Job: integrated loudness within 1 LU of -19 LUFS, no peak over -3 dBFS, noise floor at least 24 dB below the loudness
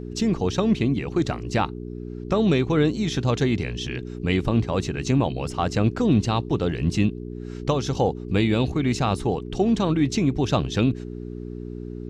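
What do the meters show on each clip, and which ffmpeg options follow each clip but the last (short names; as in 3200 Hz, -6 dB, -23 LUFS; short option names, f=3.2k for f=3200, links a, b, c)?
hum 60 Hz; harmonics up to 420 Hz; hum level -32 dBFS; loudness -23.5 LUFS; peak -8.0 dBFS; loudness target -19.0 LUFS
-> -af "bandreject=f=60:t=h:w=4,bandreject=f=120:t=h:w=4,bandreject=f=180:t=h:w=4,bandreject=f=240:t=h:w=4,bandreject=f=300:t=h:w=4,bandreject=f=360:t=h:w=4,bandreject=f=420:t=h:w=4"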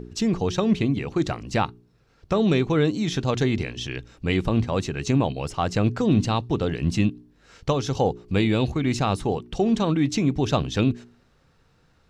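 hum none; loudness -24.0 LUFS; peak -8.5 dBFS; loudness target -19.0 LUFS
-> -af "volume=5dB"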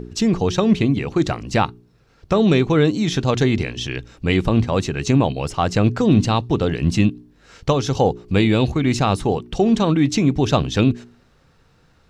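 loudness -19.0 LUFS; peak -3.5 dBFS; noise floor -56 dBFS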